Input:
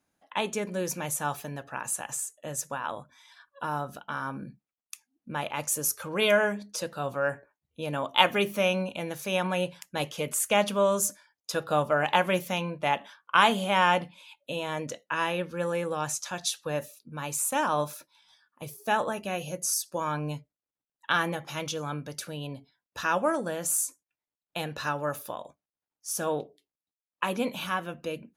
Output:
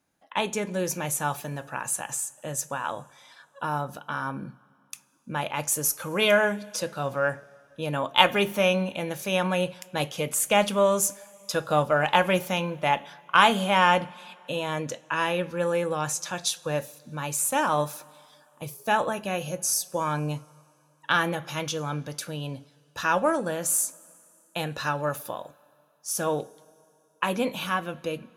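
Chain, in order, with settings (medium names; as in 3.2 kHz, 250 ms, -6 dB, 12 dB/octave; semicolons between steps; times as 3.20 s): Chebyshev shaper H 8 -41 dB, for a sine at -3.5 dBFS; two-slope reverb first 0.24 s, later 2.7 s, from -18 dB, DRR 14.5 dB; trim +2.5 dB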